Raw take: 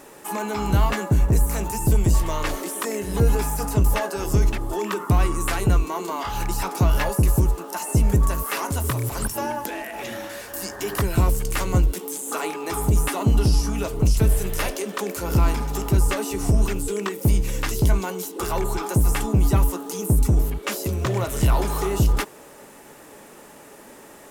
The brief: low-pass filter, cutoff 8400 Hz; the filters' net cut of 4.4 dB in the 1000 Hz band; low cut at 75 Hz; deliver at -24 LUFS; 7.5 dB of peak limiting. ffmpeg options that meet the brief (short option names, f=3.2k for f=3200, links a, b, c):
-af "highpass=75,lowpass=8.4k,equalizer=f=1k:t=o:g=-5.5,volume=4dB,alimiter=limit=-12dB:level=0:latency=1"